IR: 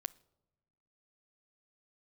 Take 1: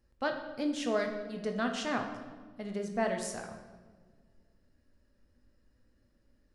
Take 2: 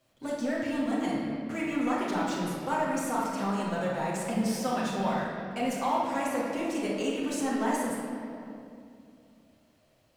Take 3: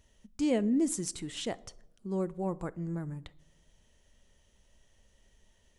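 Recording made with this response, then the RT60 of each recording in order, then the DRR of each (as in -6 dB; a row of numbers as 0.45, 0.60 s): 3; 1.5 s, 2.5 s, not exponential; 3.5, -6.5, 16.5 dB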